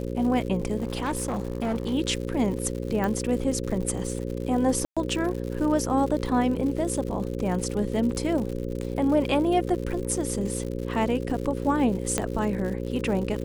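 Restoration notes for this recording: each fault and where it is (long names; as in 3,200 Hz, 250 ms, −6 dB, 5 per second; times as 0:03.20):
mains buzz 60 Hz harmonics 9 −31 dBFS
surface crackle 130 per second −33 dBFS
0:00.78–0:01.94: clipping −23 dBFS
0:03.04: click
0:04.85–0:04.97: drop-out 116 ms
0:12.18: click −10 dBFS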